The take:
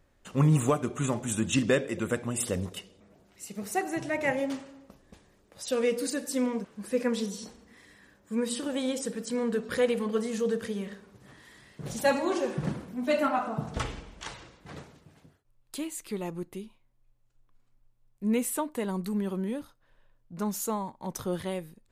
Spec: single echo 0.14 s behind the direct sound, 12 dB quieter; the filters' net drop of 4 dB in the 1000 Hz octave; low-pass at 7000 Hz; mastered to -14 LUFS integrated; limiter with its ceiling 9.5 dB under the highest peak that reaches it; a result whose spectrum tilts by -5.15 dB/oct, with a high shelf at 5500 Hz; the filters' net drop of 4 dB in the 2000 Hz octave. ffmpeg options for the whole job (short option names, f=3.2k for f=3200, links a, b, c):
-af "lowpass=7k,equalizer=f=1k:t=o:g=-4.5,equalizer=f=2k:t=o:g=-4,highshelf=f=5.5k:g=3.5,alimiter=limit=-23.5dB:level=0:latency=1,aecho=1:1:140:0.251,volume=20dB"